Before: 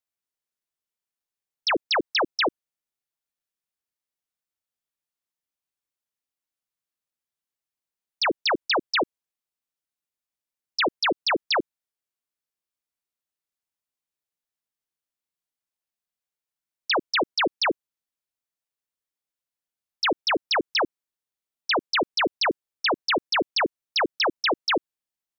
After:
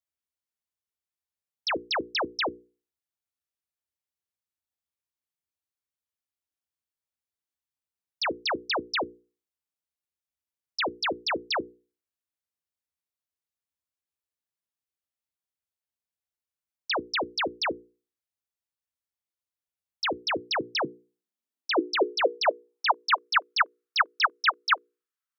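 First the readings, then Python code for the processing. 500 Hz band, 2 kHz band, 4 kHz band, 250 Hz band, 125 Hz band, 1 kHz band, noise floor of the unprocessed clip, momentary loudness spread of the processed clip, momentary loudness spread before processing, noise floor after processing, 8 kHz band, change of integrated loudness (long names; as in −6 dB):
−3.5 dB, −2.5 dB, −4.5 dB, −5.0 dB, −4.0 dB, −1.5 dB, below −85 dBFS, 7 LU, 4 LU, below −85 dBFS, can't be measured, −3.5 dB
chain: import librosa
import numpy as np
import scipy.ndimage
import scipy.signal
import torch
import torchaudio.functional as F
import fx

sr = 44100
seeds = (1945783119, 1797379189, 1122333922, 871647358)

y = fx.filter_sweep_highpass(x, sr, from_hz=67.0, to_hz=1300.0, start_s=20.01, end_s=23.34, q=4.2)
y = fx.hum_notches(y, sr, base_hz=60, count=8)
y = y * librosa.db_to_amplitude(-5.0)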